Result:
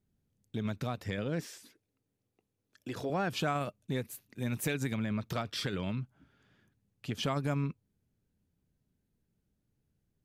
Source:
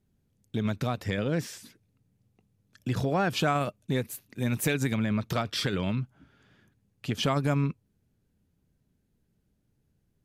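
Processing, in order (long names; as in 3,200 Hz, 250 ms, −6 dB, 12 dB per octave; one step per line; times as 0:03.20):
0:01.40–0:03.10: low shelf with overshoot 240 Hz −8.5 dB, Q 1.5
level −6 dB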